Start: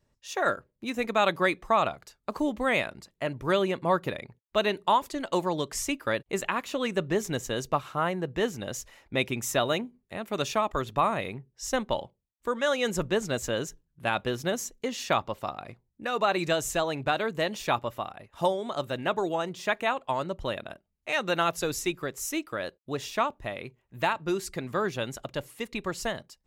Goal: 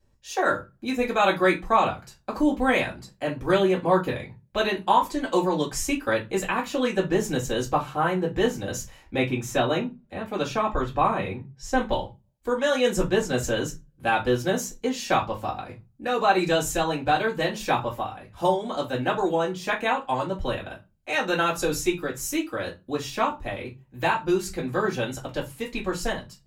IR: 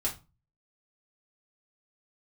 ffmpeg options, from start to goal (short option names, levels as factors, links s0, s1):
-filter_complex "[0:a]asettb=1/sr,asplit=3[s0][s1][s2];[s0]atrim=end=9.184[s3];[s1]atrim=start=9.18:end=11.78,asetpts=PTS-STARTPTS,afade=t=in:d=0.004:c=qsin,afade=t=out:st=2.596:d=0.004:c=qsin,highshelf=f=5600:g=-11.5[s4];[s2]atrim=start=11.776[s5];[s3][s4]acrossfade=d=0.004:c1=hsin:c2=qsin[s6];[s6][s5]acrossfade=d=0.004:c1=qsin:c2=hsin[s7];[1:a]atrim=start_sample=2205,asetrate=52920,aresample=44100[s8];[s7][s8]afir=irnorm=-1:irlink=0"